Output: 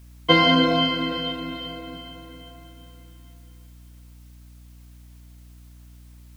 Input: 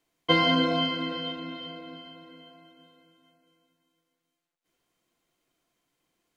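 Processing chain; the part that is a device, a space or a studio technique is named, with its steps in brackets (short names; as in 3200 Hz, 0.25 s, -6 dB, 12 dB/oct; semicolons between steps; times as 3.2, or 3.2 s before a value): video cassette with head-switching buzz (buzz 60 Hz, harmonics 5, -52 dBFS -8 dB/oct; white noise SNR 34 dB); gain +5.5 dB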